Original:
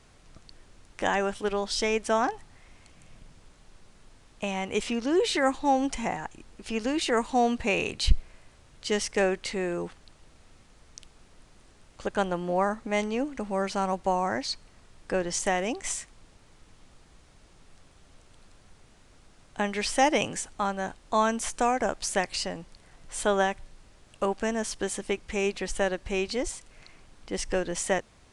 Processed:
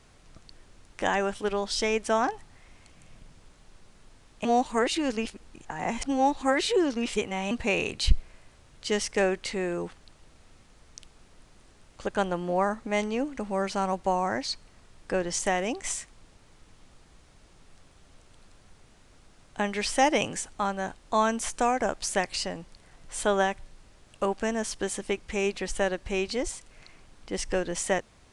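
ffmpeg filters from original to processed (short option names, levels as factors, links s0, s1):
-filter_complex "[0:a]asplit=3[s0][s1][s2];[s0]atrim=end=4.452[s3];[s1]atrim=start=4.448:end=7.512,asetpts=PTS-STARTPTS,areverse[s4];[s2]atrim=start=7.508[s5];[s3][s4]acrossfade=d=0.004:c1=hsin:c2=hsin[s6];[s6][s5]acrossfade=d=0.004:c1=hsin:c2=hsin"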